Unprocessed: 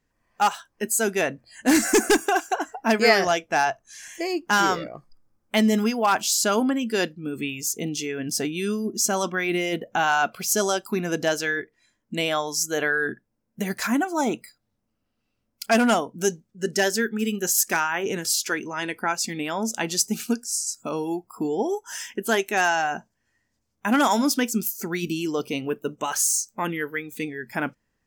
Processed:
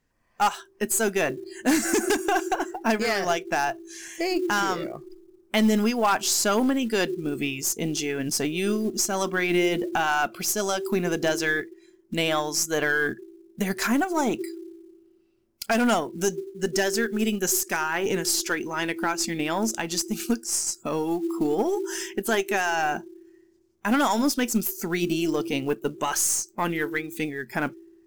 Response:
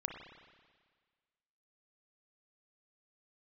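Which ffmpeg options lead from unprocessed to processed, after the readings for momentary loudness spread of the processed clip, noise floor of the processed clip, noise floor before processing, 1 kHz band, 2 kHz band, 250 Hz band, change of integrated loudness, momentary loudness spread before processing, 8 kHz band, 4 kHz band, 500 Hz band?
7 LU, -61 dBFS, -76 dBFS, -2.0 dB, -2.0 dB, 0.0 dB, -1.0 dB, 10 LU, -1.5 dB, -1.5 dB, -1.0 dB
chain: -filter_complex "[0:a]aeval=exprs='0.668*(cos(1*acos(clip(val(0)/0.668,-1,1)))-cos(1*PI/2))+0.0944*(cos(2*acos(clip(val(0)/0.668,-1,1)))-cos(2*PI/2))+0.0188*(cos(5*acos(clip(val(0)/0.668,-1,1)))-cos(5*PI/2))+0.119*(cos(6*acos(clip(val(0)/0.668,-1,1)))-cos(6*PI/2))+0.106*(cos(8*acos(clip(val(0)/0.668,-1,1)))-cos(8*PI/2))':c=same,asplit=2[s0][s1];[s1]asuperpass=centerf=360:order=20:qfactor=5.8[s2];[1:a]atrim=start_sample=2205,adelay=66[s3];[s2][s3]afir=irnorm=-1:irlink=0,volume=0.841[s4];[s0][s4]amix=inputs=2:normalize=0,alimiter=limit=0.211:level=0:latency=1:release=223,acrusher=bits=7:mode=log:mix=0:aa=0.000001"

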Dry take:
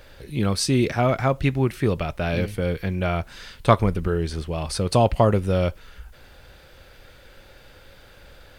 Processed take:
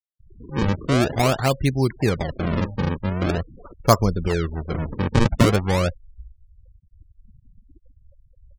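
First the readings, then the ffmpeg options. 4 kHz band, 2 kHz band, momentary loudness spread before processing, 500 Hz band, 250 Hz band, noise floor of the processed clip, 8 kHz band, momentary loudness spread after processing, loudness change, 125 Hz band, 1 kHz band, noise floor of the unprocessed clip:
+1.0 dB, +2.0 dB, 8 LU, -1.0 dB, +1.5 dB, -60 dBFS, -0.5 dB, 9 LU, +0.5 dB, +1.5 dB, 0.0 dB, -50 dBFS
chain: -filter_complex "[0:a]acrossover=split=3700[s0][s1];[s0]adelay=200[s2];[s2][s1]amix=inputs=2:normalize=0,acrusher=samples=36:mix=1:aa=0.000001:lfo=1:lforange=57.6:lforate=0.44,afftfilt=real='re*gte(hypot(re,im),0.0251)':imag='im*gte(hypot(re,im),0.0251)':win_size=1024:overlap=0.75,volume=1.12"

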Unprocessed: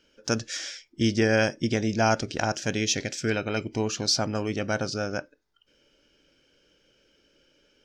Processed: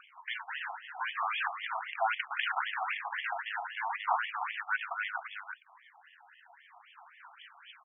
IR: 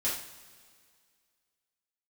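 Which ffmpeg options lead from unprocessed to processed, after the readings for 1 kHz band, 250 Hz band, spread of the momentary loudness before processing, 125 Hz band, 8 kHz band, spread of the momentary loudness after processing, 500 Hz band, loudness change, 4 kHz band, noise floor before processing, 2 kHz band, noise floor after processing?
0.0 dB, under -40 dB, 8 LU, under -40 dB, under -40 dB, 17 LU, -19.0 dB, -8.0 dB, -11.0 dB, -67 dBFS, -2.0 dB, -61 dBFS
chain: -filter_complex "[0:a]acompressor=mode=upward:threshold=0.00562:ratio=2.5,lowpass=f=8000:t=q:w=8.1,acrusher=samples=22:mix=1:aa=0.000001:lfo=1:lforange=35.2:lforate=0.36,asoftclip=type=tanh:threshold=0.0501,aecho=1:1:338:0.398,asplit=2[s0][s1];[1:a]atrim=start_sample=2205,atrim=end_sample=4410[s2];[s1][s2]afir=irnorm=-1:irlink=0,volume=0.0841[s3];[s0][s3]amix=inputs=2:normalize=0,afftfilt=real='re*between(b*sr/1024,930*pow(2500/930,0.5+0.5*sin(2*PI*3.8*pts/sr))/1.41,930*pow(2500/930,0.5+0.5*sin(2*PI*3.8*pts/sr))*1.41)':imag='im*between(b*sr/1024,930*pow(2500/930,0.5+0.5*sin(2*PI*3.8*pts/sr))/1.41,930*pow(2500/930,0.5+0.5*sin(2*PI*3.8*pts/sr))*1.41)':win_size=1024:overlap=0.75,volume=2.24"

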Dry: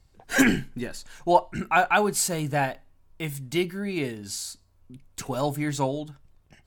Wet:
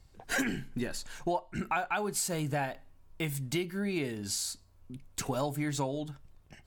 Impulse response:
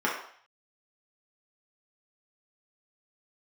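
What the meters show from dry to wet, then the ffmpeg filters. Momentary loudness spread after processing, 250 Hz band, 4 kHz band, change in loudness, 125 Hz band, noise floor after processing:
10 LU, -7.5 dB, -5.0 dB, -8.0 dB, -4.5 dB, -60 dBFS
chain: -af "acompressor=threshold=0.0316:ratio=6,volume=1.12"

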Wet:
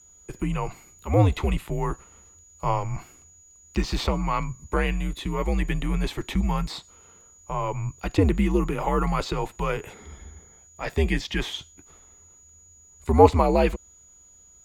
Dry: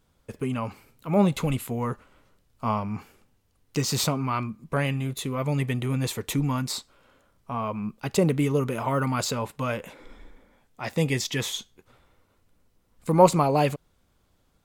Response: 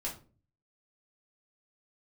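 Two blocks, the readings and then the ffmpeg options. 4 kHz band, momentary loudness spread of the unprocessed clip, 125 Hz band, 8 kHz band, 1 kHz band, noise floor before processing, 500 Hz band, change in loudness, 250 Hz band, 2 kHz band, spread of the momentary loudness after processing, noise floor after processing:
-2.0 dB, 12 LU, +0.5 dB, -7.0 dB, +1.5 dB, -67 dBFS, +1.0 dB, +1.0 dB, 0.0 dB, +1.5 dB, 15 LU, -54 dBFS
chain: -filter_complex "[0:a]aeval=exprs='val(0)+0.00224*sin(2*PI*6900*n/s)':c=same,afreqshift=-88,acrossover=split=4100[s0][s1];[s1]acompressor=threshold=0.00316:ratio=4:attack=1:release=60[s2];[s0][s2]amix=inputs=2:normalize=0,volume=1.26"

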